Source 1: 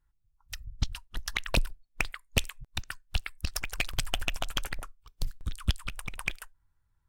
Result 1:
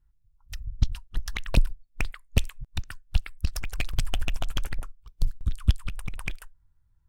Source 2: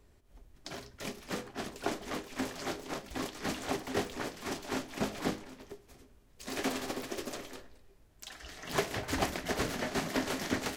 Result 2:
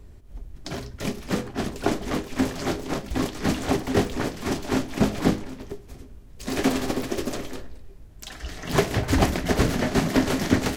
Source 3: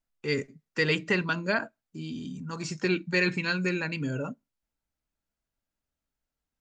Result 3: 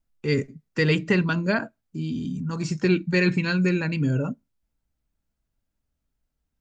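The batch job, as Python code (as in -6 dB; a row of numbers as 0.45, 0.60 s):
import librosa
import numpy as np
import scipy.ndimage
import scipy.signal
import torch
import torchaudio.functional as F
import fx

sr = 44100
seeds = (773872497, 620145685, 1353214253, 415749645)

y = fx.low_shelf(x, sr, hz=290.0, db=11.5)
y = y * 10.0 ** (-26 / 20.0) / np.sqrt(np.mean(np.square(y)))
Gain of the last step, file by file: -3.5, +7.0, +1.0 dB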